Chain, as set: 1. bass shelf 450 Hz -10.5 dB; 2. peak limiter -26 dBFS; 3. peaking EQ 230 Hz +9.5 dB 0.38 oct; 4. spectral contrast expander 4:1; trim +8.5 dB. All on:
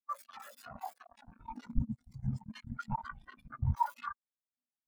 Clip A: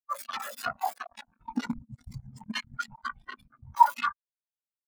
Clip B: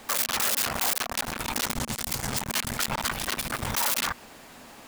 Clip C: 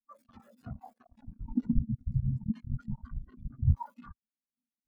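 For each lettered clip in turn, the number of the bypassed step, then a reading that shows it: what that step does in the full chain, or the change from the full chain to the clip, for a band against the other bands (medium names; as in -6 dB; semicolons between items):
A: 2, mean gain reduction 4.5 dB; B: 4, 4 kHz band +24.0 dB; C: 1, crest factor change -2.0 dB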